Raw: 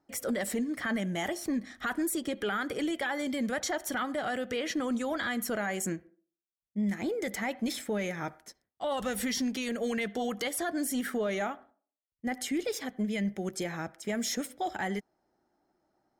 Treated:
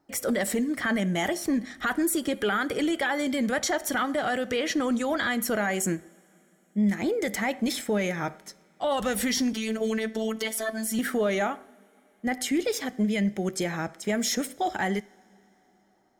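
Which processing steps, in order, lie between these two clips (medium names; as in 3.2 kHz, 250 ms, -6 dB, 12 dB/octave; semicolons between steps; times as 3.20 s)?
two-slope reverb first 0.43 s, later 3.9 s, from -18 dB, DRR 18 dB; 9.53–10.99 s: robot voice 221 Hz; trim +5.5 dB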